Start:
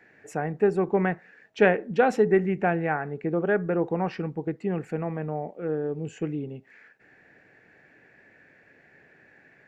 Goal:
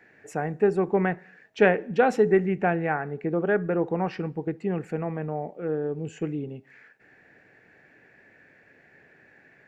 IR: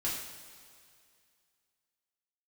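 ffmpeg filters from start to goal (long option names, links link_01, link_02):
-filter_complex "[0:a]asplit=2[link_01][link_02];[1:a]atrim=start_sample=2205,afade=type=out:start_time=0.39:duration=0.01,atrim=end_sample=17640,asetrate=52920,aresample=44100[link_03];[link_02][link_03]afir=irnorm=-1:irlink=0,volume=-25.5dB[link_04];[link_01][link_04]amix=inputs=2:normalize=0"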